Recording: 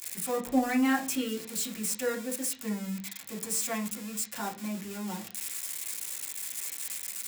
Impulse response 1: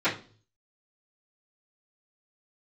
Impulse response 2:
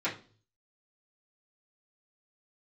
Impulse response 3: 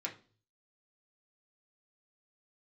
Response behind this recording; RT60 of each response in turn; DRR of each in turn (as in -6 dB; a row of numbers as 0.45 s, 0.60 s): 3; 0.40 s, 0.40 s, 0.40 s; -17.0 dB, -10.5 dB, -2.0 dB